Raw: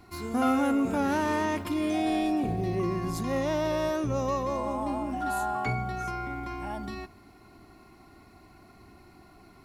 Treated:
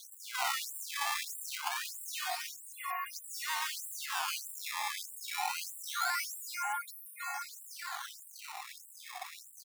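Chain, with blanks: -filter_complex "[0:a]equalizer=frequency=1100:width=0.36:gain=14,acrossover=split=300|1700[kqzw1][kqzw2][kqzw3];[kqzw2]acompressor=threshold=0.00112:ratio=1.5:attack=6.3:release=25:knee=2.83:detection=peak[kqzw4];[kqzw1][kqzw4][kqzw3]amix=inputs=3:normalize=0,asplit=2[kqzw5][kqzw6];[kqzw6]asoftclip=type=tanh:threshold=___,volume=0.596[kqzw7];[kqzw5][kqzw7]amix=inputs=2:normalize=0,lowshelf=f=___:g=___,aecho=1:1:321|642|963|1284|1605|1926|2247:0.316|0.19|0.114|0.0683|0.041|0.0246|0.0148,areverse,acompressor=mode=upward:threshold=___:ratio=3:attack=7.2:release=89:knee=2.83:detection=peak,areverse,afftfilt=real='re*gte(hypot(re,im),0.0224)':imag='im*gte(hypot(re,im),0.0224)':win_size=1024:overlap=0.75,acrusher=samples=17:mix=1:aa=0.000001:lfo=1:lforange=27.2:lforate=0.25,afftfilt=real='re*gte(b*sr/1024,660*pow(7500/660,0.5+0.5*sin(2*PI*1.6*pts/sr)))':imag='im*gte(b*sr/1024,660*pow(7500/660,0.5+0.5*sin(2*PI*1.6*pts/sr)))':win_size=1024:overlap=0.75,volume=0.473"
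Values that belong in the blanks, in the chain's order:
0.0562, 370, 3, 0.0794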